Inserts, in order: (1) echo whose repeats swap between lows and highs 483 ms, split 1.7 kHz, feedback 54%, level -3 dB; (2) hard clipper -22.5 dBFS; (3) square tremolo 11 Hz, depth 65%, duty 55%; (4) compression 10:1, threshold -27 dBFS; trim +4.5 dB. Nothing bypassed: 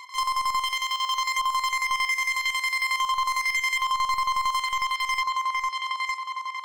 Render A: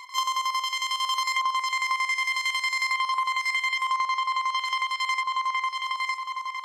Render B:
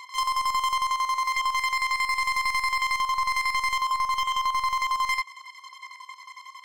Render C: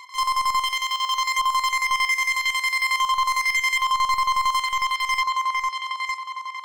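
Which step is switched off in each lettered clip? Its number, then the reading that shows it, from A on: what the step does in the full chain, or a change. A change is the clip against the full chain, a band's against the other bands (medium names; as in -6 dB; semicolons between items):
2, distortion -8 dB; 1, momentary loudness spread change +14 LU; 4, mean gain reduction 2.5 dB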